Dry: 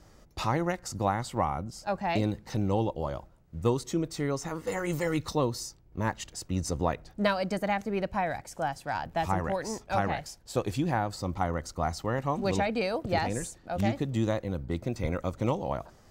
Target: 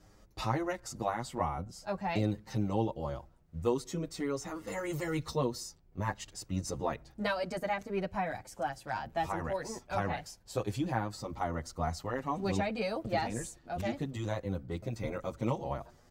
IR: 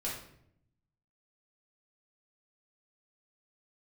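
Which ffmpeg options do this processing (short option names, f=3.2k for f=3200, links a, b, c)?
-filter_complex "[0:a]asplit=2[a][b];[b]adelay=7.5,afreqshift=0.48[c];[a][c]amix=inputs=2:normalize=1,volume=-1.5dB"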